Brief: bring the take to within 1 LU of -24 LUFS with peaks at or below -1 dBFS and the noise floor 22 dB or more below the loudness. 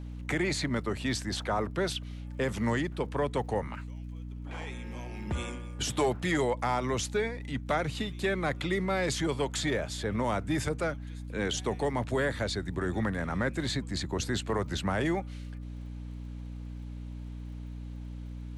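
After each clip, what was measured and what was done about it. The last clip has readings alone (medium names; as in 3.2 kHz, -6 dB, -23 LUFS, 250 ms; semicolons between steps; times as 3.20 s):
tick rate 39 per s; hum 60 Hz; highest harmonic 300 Hz; hum level -37 dBFS; loudness -31.5 LUFS; peak level -17.0 dBFS; loudness target -24.0 LUFS
-> de-click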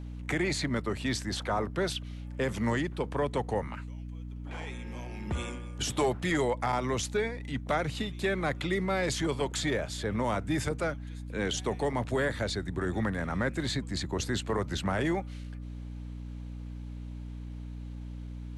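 tick rate 0 per s; hum 60 Hz; highest harmonic 300 Hz; hum level -37 dBFS
-> de-hum 60 Hz, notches 5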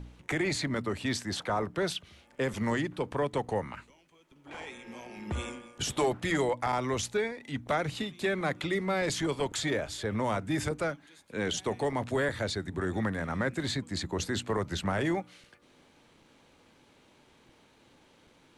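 hum not found; loudness -32.0 LUFS; peak level -17.0 dBFS; loudness target -24.0 LUFS
-> trim +8 dB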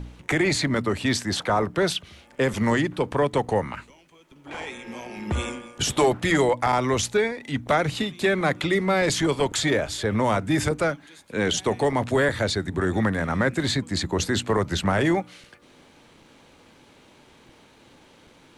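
loudness -24.0 LUFS; peak level -9.0 dBFS; noise floor -54 dBFS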